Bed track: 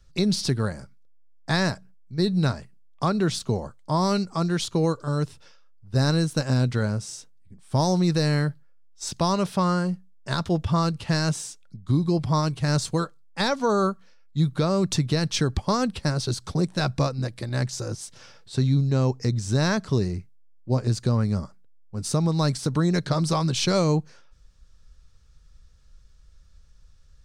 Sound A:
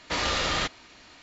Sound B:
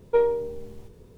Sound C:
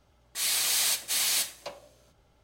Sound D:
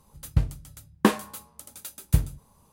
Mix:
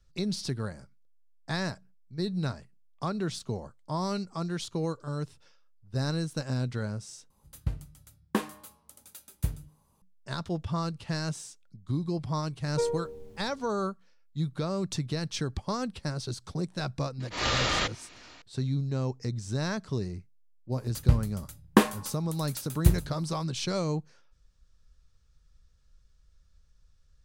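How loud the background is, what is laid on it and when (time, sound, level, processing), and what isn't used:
bed track -8.5 dB
7.3 replace with D -8.5 dB + de-hum 152.7 Hz, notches 37
12.64 add B -8.5 dB
17.2 add A -0.5 dB + auto swell 0.151 s
20.72 add D
not used: C

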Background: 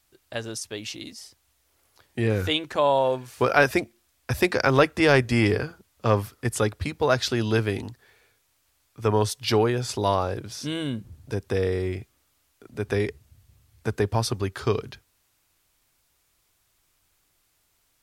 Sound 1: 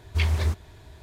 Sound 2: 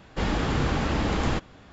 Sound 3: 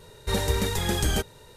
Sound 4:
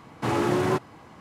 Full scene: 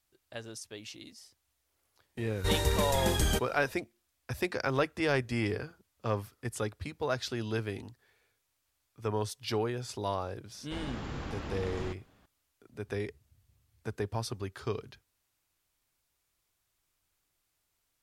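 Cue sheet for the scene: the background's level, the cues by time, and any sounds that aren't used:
background -10.5 dB
2.17 add 3 -3.5 dB
10.54 add 2 -14 dB
not used: 1, 4

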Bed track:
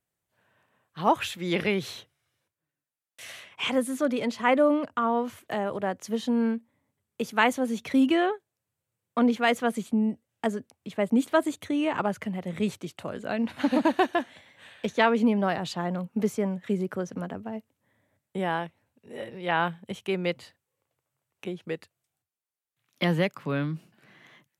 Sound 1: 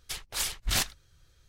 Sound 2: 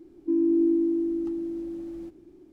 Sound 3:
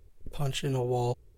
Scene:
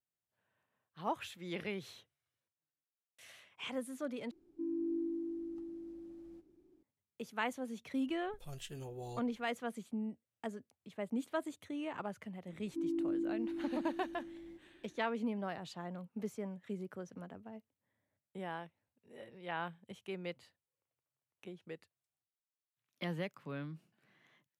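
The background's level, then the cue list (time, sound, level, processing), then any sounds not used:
bed track -14.5 dB
4.31 replace with 2 -15 dB
8.07 add 3 -17 dB + high shelf 3300 Hz +6.5 dB
12.48 add 2 -13.5 dB
not used: 1

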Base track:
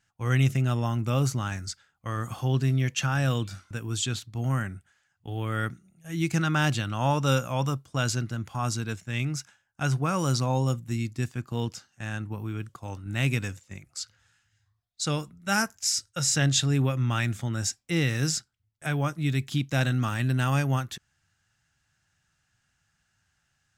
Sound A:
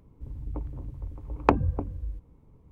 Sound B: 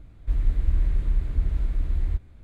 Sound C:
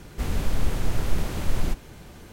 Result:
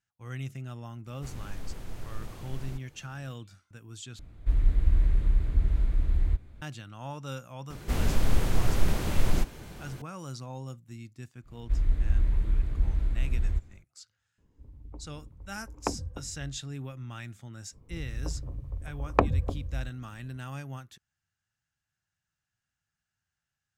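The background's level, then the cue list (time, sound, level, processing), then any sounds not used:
base track -14.5 dB
1.04 add C -14.5 dB, fades 0.05 s
4.19 replace with B -0.5 dB
7.7 add C
11.42 add B -2.5 dB, fades 0.10 s
14.38 add A -10.5 dB + bell 130 Hz -7 dB 0.22 oct
17.7 add A -1.5 dB, fades 0.05 s + comb 1.7 ms, depth 33%

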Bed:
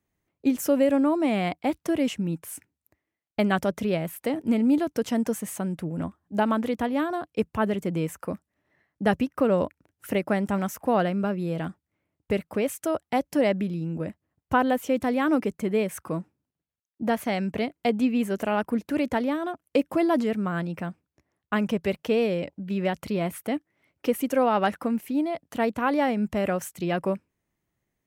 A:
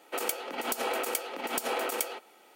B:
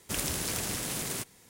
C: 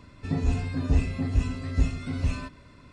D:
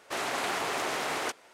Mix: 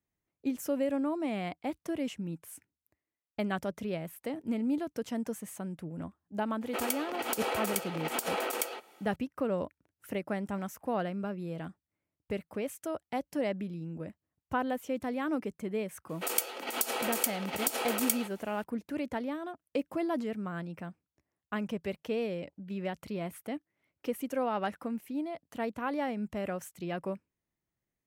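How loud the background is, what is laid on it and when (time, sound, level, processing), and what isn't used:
bed -9.5 dB
6.61 add A -1.5 dB
16.09 add A -4 dB + high shelf 3300 Hz +8 dB
not used: B, C, D

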